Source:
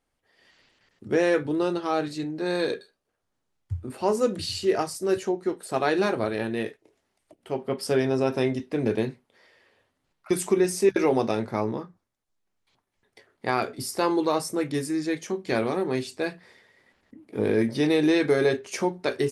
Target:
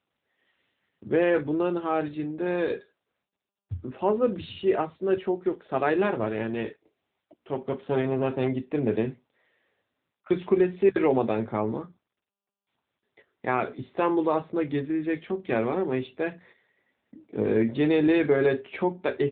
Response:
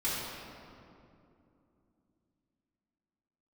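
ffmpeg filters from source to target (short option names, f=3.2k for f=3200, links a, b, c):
-filter_complex "[0:a]asplit=3[a][b][c];[a]afade=t=out:st=6.11:d=0.02[d];[b]aeval=exprs='clip(val(0),-1,0.0355)':c=same,afade=t=in:st=6.11:d=0.02,afade=t=out:st=8.47:d=0.02[e];[c]afade=t=in:st=8.47:d=0.02[f];[d][e][f]amix=inputs=3:normalize=0,agate=range=-8dB:threshold=-52dB:ratio=16:detection=peak" -ar 8000 -c:a libopencore_amrnb -b:a 10200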